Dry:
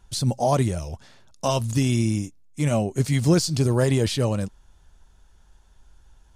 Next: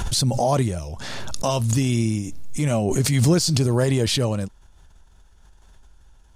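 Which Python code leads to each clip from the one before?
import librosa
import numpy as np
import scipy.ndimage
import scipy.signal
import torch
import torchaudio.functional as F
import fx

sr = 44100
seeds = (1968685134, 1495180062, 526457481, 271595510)

y = fx.pre_swell(x, sr, db_per_s=26.0)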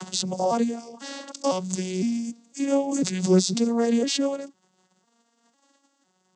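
y = fx.vocoder_arp(x, sr, chord='major triad', root=54, every_ms=503)
y = fx.bass_treble(y, sr, bass_db=-7, treble_db=13)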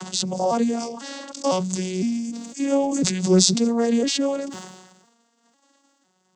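y = fx.sustainer(x, sr, db_per_s=48.0)
y = y * 10.0 ** (1.5 / 20.0)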